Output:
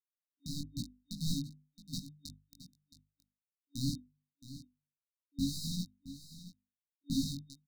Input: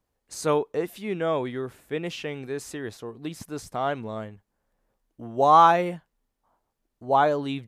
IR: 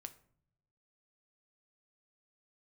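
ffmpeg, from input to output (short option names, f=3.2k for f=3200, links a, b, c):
-filter_complex "[0:a]acrossover=split=180|4500[a][b][c];[a]acompressor=threshold=-52dB:ratio=8[d];[d][b][c]amix=inputs=3:normalize=0,aeval=exprs='sgn(val(0))*max(abs(val(0))-0.0178,0)':c=same,acrusher=bits=3:mix=0:aa=0.000001,bandreject=f=50:t=h:w=6,bandreject=f=100:t=h:w=6,bandreject=f=150:t=h:w=6,bandreject=f=200:t=h:w=6,bandreject=f=250:t=h:w=6,bandreject=f=300:t=h:w=6,bandreject=f=350:t=h:w=6,bandreject=f=400:t=h:w=6,dynaudnorm=f=260:g=5:m=11.5dB,asplit=2[e][f];[f]highpass=f=720:p=1,volume=9dB,asoftclip=type=tanh:threshold=-4dB[g];[e][g]amix=inputs=2:normalize=0,lowpass=f=1k:p=1,volume=-6dB,afftfilt=real='re*(1-between(b*sr/4096,280,3700))':imag='im*(1-between(b*sr/4096,280,3700))':win_size=4096:overlap=0.75,flanger=delay=16.5:depth=5.4:speed=0.99,highshelf=f=2.5k:g=-7.5,asplit=2[h][i];[i]aecho=0:1:670:0.2[j];[h][j]amix=inputs=2:normalize=0,volume=5.5dB"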